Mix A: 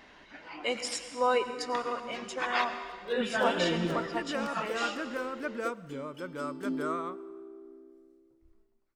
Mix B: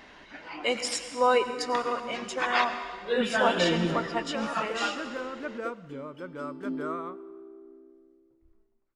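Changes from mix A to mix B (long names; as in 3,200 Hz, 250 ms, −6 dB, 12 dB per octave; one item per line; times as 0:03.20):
speech +4.0 dB
background: add low-pass filter 2,300 Hz 6 dB per octave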